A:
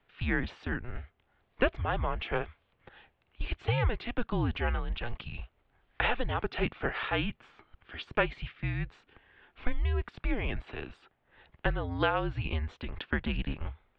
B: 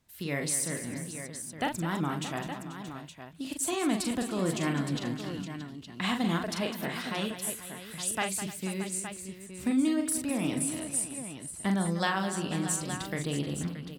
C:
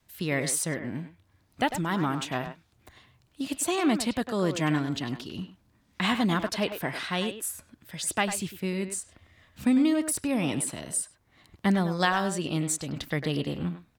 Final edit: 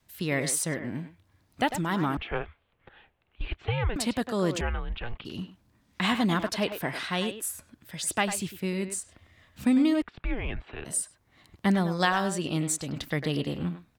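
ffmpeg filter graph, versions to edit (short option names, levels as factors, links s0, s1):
-filter_complex "[0:a]asplit=3[s0][s1][s2];[2:a]asplit=4[s3][s4][s5][s6];[s3]atrim=end=2.172[s7];[s0]atrim=start=2.168:end=3.962[s8];[s4]atrim=start=3.958:end=4.612[s9];[s1]atrim=start=4.608:end=5.252[s10];[s5]atrim=start=5.248:end=10.022[s11];[s2]atrim=start=10.018:end=10.852[s12];[s6]atrim=start=10.848[s13];[s7][s8]acrossfade=d=0.004:c1=hsin:c2=hsin[s14];[s14][s9]acrossfade=d=0.004:c1=hsin:c2=hsin[s15];[s15][s10]acrossfade=d=0.004:c1=hsin:c2=hsin[s16];[s16][s11]acrossfade=d=0.004:c1=hsin:c2=hsin[s17];[s17][s12]acrossfade=d=0.004:c1=hsin:c2=hsin[s18];[s18][s13]acrossfade=d=0.004:c1=hsin:c2=hsin"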